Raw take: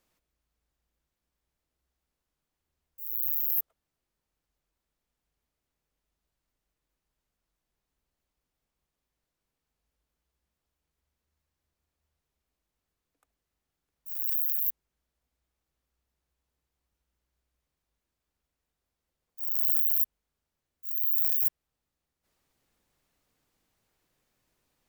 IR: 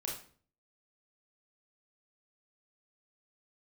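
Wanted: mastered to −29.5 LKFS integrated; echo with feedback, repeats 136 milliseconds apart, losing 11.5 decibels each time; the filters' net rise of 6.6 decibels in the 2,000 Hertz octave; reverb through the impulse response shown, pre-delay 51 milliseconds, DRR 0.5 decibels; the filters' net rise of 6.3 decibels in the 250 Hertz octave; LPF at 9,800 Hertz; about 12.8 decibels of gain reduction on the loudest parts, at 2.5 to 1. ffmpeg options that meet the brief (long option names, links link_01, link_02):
-filter_complex "[0:a]lowpass=9800,equalizer=frequency=250:width_type=o:gain=8,equalizer=frequency=2000:width_type=o:gain=8,acompressor=threshold=-53dB:ratio=2.5,aecho=1:1:136|272|408:0.266|0.0718|0.0194,asplit=2[link_01][link_02];[1:a]atrim=start_sample=2205,adelay=51[link_03];[link_02][link_03]afir=irnorm=-1:irlink=0,volume=-1.5dB[link_04];[link_01][link_04]amix=inputs=2:normalize=0,volume=22dB"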